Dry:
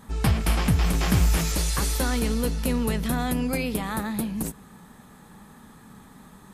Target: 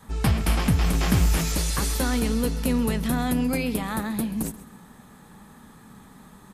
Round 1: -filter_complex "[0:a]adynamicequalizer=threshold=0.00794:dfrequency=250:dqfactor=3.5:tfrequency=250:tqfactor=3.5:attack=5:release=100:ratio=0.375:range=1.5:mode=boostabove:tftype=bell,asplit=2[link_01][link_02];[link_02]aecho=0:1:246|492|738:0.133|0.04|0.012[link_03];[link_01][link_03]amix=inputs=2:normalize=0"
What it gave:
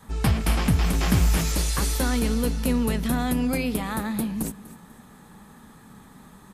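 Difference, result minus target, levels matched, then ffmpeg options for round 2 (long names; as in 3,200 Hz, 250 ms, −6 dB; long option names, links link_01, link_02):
echo 113 ms late
-filter_complex "[0:a]adynamicequalizer=threshold=0.00794:dfrequency=250:dqfactor=3.5:tfrequency=250:tqfactor=3.5:attack=5:release=100:ratio=0.375:range=1.5:mode=boostabove:tftype=bell,asplit=2[link_01][link_02];[link_02]aecho=0:1:133|266|399:0.133|0.04|0.012[link_03];[link_01][link_03]amix=inputs=2:normalize=0"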